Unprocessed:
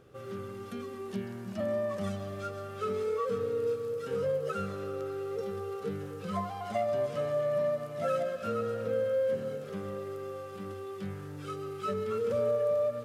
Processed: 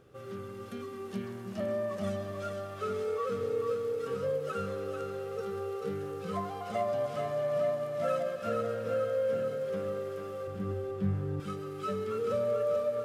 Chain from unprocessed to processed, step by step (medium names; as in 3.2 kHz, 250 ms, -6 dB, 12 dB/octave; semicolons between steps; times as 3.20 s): 10.47–11.40 s: tilt EQ -3.5 dB/octave; thinning echo 439 ms, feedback 55%, high-pass 290 Hz, level -5.5 dB; trim -1.5 dB